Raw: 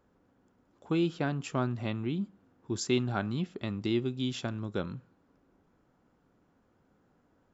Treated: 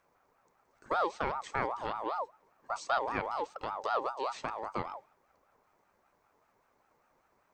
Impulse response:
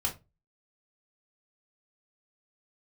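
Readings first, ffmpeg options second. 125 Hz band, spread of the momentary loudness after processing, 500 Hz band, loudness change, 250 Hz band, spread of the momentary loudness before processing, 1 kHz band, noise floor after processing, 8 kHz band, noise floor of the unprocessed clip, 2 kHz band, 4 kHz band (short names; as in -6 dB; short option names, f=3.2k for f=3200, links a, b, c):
-17.5 dB, 8 LU, -1.5 dB, -2.5 dB, -15.5 dB, 8 LU, +9.5 dB, -73 dBFS, n/a, -70 dBFS, +2.0 dB, -7.5 dB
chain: -filter_complex "[0:a]acrossover=split=2900[a][b];[b]acompressor=threshold=-52dB:ratio=4:attack=1:release=60[c];[a][c]amix=inputs=2:normalize=0,aexciter=amount=2.4:drive=4.8:freq=4.6k,aeval=exprs='val(0)*sin(2*PI*870*n/s+870*0.25/5.1*sin(2*PI*5.1*n/s))':c=same"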